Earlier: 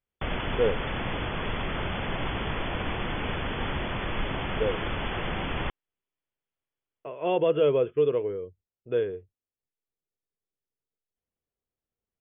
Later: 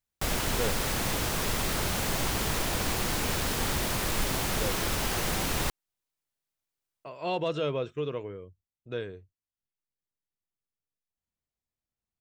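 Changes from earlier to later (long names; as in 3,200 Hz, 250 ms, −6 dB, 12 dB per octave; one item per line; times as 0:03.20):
speech: add parametric band 440 Hz −10.5 dB 0.81 octaves
master: remove linear-phase brick-wall low-pass 3,500 Hz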